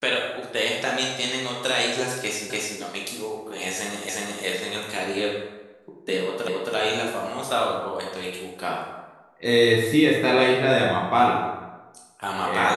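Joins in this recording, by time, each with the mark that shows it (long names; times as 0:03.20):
0:02.50: the same again, the last 0.29 s
0:04.09: the same again, the last 0.36 s
0:06.48: the same again, the last 0.27 s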